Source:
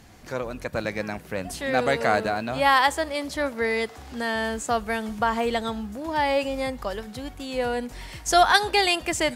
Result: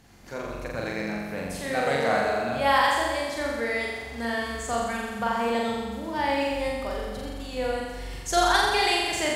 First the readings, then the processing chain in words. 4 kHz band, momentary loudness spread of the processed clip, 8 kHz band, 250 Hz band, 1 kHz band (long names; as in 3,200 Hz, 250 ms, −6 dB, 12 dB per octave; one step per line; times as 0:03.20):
−1.5 dB, 13 LU, −1.5 dB, −1.5 dB, −2.0 dB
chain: flutter between parallel walls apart 7.4 metres, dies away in 1.4 s
level −6 dB